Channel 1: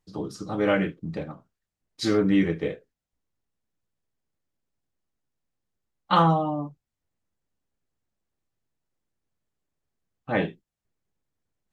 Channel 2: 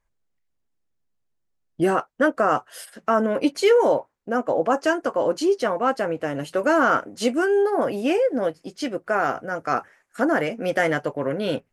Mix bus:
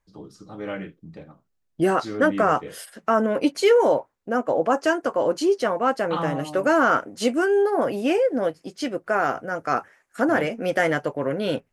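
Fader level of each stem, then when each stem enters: -9.0 dB, 0.0 dB; 0.00 s, 0.00 s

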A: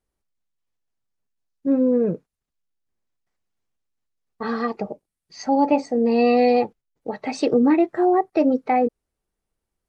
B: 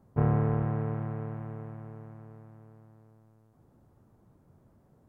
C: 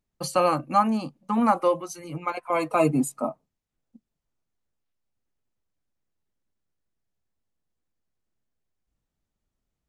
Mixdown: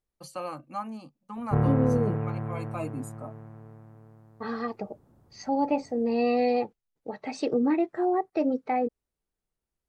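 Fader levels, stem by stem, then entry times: -7.5 dB, +1.5 dB, -14.0 dB; 0.00 s, 1.35 s, 0.00 s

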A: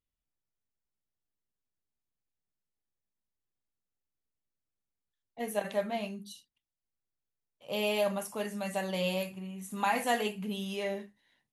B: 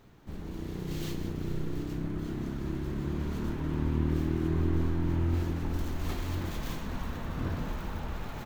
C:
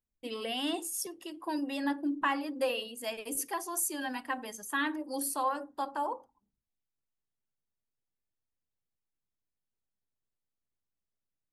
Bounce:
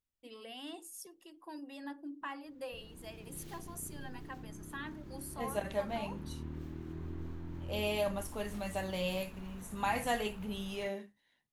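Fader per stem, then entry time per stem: -4.0 dB, -14.5 dB, -12.5 dB; 0.00 s, 2.45 s, 0.00 s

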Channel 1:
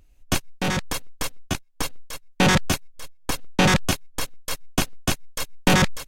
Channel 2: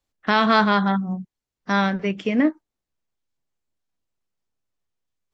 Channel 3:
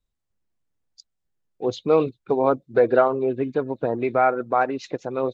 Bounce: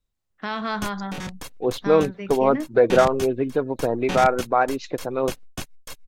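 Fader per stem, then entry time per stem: -10.0 dB, -10.5 dB, +1.0 dB; 0.50 s, 0.15 s, 0.00 s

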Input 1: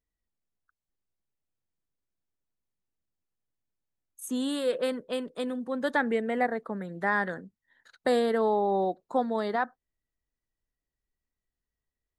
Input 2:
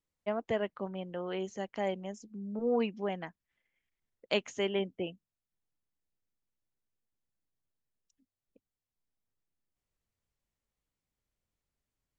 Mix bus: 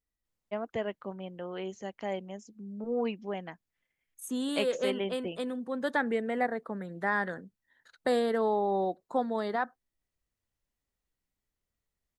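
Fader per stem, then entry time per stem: -2.5 dB, -1.5 dB; 0.00 s, 0.25 s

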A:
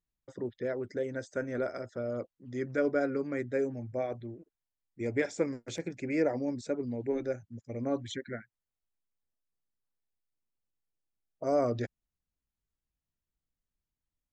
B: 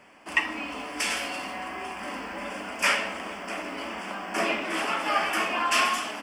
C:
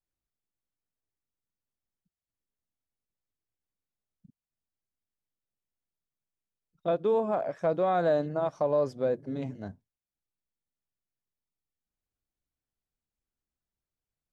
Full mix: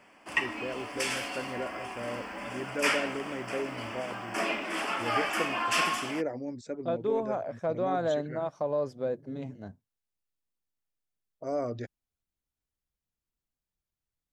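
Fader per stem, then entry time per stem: -4.0 dB, -4.0 dB, -3.5 dB; 0.00 s, 0.00 s, 0.00 s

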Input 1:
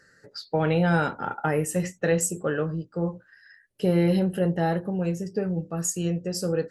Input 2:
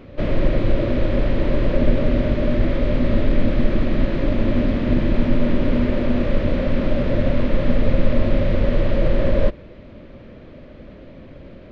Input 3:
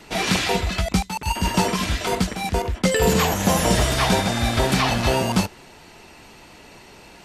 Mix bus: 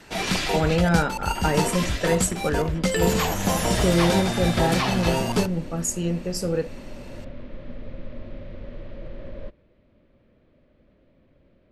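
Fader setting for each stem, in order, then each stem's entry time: +1.0 dB, -19.5 dB, -4.0 dB; 0.00 s, 0.00 s, 0.00 s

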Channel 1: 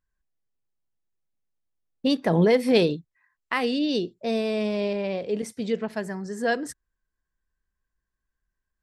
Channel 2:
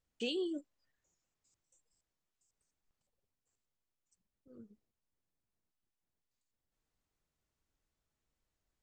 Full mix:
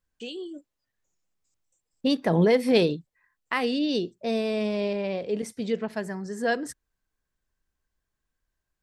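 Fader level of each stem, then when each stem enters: -1.0 dB, -0.5 dB; 0.00 s, 0.00 s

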